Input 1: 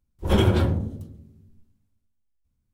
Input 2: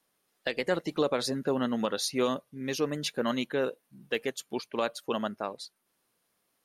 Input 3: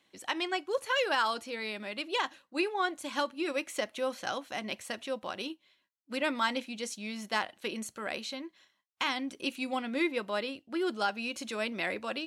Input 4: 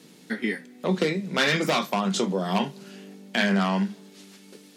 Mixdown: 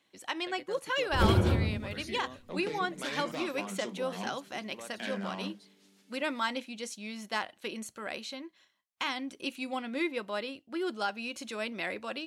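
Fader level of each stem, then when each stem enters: −5.5, −17.5, −2.0, −15.5 decibels; 0.90, 0.00, 0.00, 1.65 seconds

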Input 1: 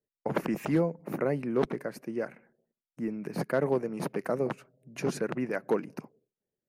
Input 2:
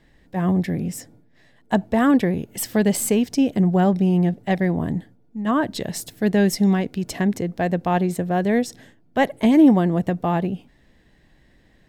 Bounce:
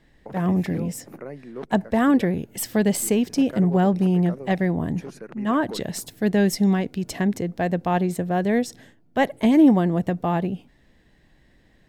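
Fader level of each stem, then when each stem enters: −8.0, −1.5 decibels; 0.00, 0.00 seconds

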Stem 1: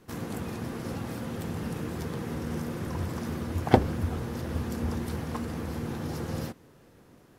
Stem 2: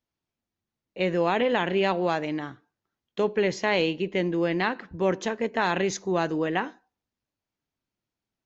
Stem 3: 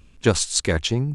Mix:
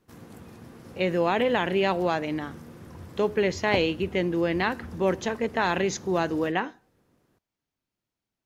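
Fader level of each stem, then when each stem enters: −11.0 dB, 0.0 dB, muted; 0.00 s, 0.00 s, muted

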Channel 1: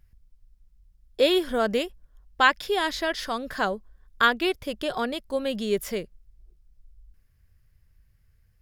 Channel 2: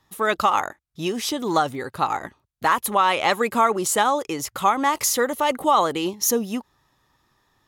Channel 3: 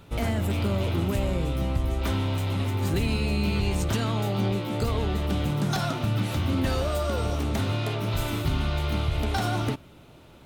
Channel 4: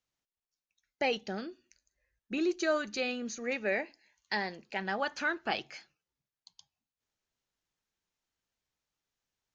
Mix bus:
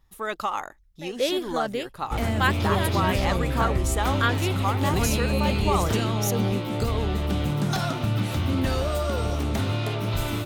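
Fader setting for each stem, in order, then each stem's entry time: −4.5, −8.5, +1.0, −11.5 decibels; 0.00, 0.00, 2.00, 0.00 seconds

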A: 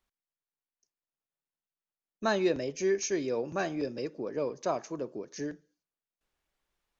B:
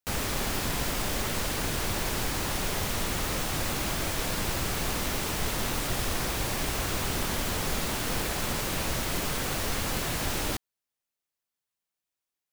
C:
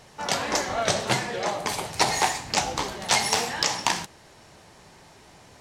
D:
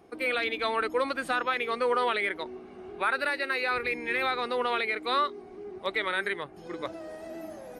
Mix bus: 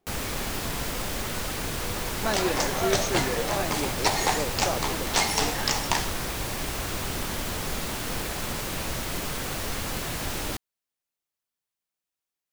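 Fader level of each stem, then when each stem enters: −0.5, −1.0, −2.5, −17.5 decibels; 0.00, 0.00, 2.05, 0.00 seconds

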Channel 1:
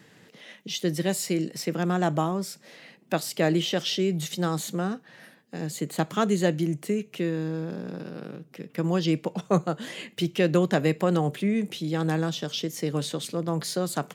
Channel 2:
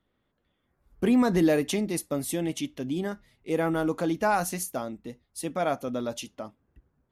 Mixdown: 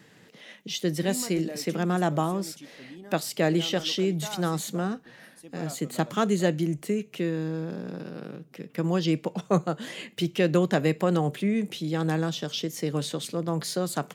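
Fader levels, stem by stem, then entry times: −0.5, −15.0 decibels; 0.00, 0.00 seconds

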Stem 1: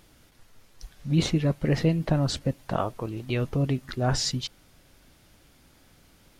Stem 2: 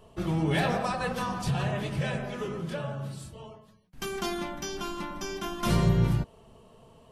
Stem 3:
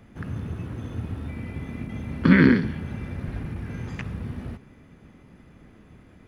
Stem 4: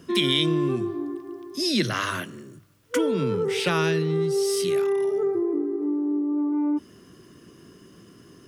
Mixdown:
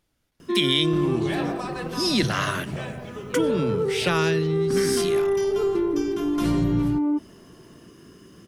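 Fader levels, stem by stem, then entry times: −16.0, −2.5, −13.5, +1.0 decibels; 0.00, 0.75, 2.45, 0.40 seconds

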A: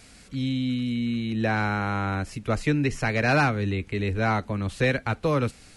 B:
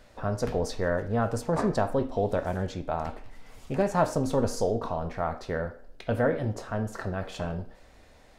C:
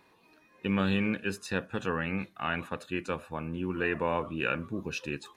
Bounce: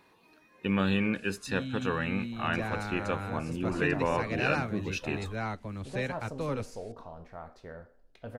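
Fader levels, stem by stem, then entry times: −10.5, −14.5, +0.5 decibels; 1.15, 2.15, 0.00 seconds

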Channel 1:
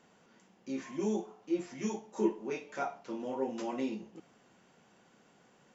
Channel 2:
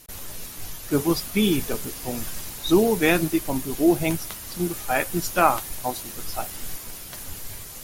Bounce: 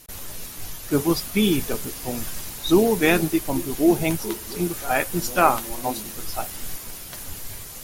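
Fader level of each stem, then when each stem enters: −0.5, +1.0 decibels; 2.05, 0.00 seconds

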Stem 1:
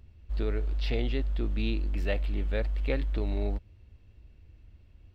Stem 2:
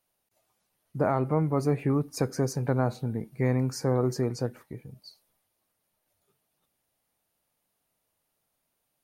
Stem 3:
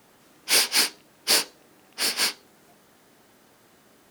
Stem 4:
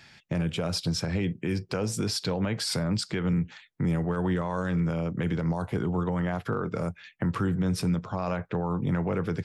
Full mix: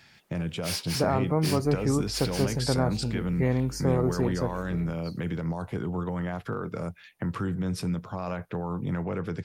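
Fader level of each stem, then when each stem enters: −14.0, 0.0, −14.5, −3.0 decibels; 1.35, 0.00, 0.15, 0.00 seconds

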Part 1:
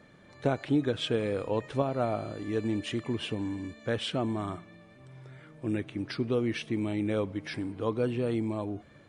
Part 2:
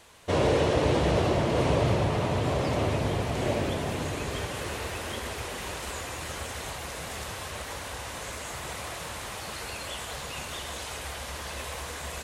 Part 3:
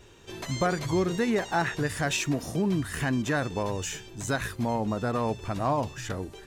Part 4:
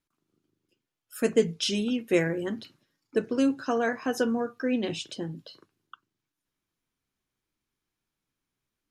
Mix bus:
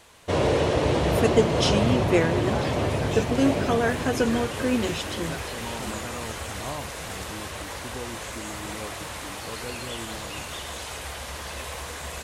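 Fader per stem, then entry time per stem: −10.0, +1.5, −9.5, +2.5 decibels; 1.65, 0.00, 1.00, 0.00 seconds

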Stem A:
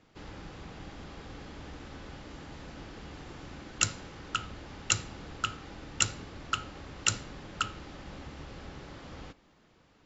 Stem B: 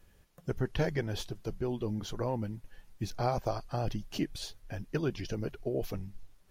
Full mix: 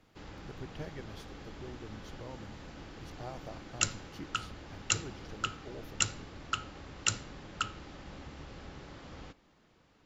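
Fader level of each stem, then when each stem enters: −2.5, −13.5 decibels; 0.00, 0.00 seconds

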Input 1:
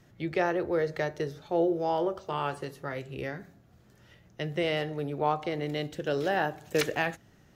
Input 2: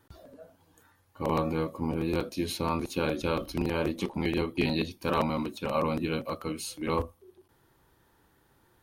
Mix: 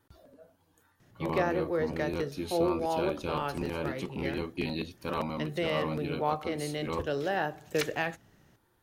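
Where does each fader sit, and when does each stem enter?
−2.5, −5.5 decibels; 1.00, 0.00 seconds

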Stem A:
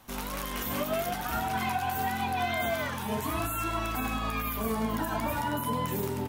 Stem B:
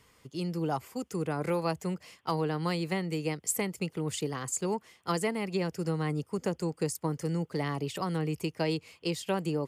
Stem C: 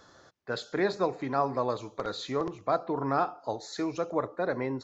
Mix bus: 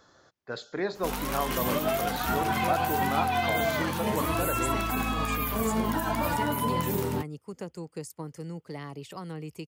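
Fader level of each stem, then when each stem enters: +2.5, −7.0, −3.0 decibels; 0.95, 1.15, 0.00 seconds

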